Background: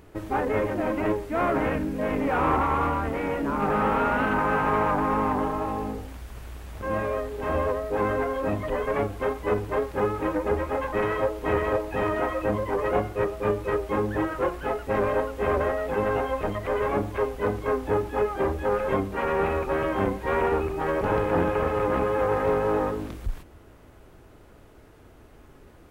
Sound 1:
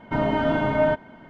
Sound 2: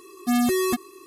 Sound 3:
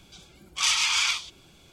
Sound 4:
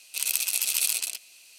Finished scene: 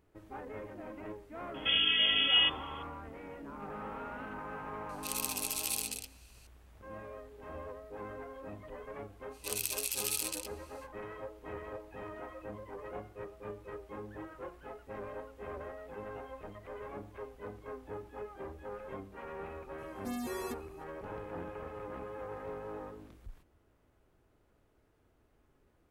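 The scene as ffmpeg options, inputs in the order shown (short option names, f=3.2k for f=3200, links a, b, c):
-filter_complex "[4:a]asplit=2[a][b];[0:a]volume=-19dB[c];[1:a]lowpass=f=3k:t=q:w=0.5098,lowpass=f=3k:t=q:w=0.6013,lowpass=f=3k:t=q:w=0.9,lowpass=f=3k:t=q:w=2.563,afreqshift=-3500,atrim=end=1.29,asetpts=PTS-STARTPTS,volume=-6dB,afade=t=in:d=0.004:c=hsin,afade=t=out:st=1.286:d=0.004:c=hsin,adelay=1540[d];[a]atrim=end=1.58,asetpts=PTS-STARTPTS,volume=-10dB,afade=t=in:d=0.004:c=hsin,afade=t=out:st=1.576:d=0.004:c=hsin,adelay=215649S[e];[b]atrim=end=1.58,asetpts=PTS-STARTPTS,volume=-9.5dB,afade=t=in:d=0.05,afade=t=out:st=1.53:d=0.05,adelay=410130S[f];[2:a]atrim=end=1.06,asetpts=PTS-STARTPTS,volume=-17.5dB,afade=t=in:d=0.004:c=hsin,afade=t=out:st=1.056:d=0.004:c=hsin,adelay=19780[g];[c][d][e][f][g]amix=inputs=5:normalize=0"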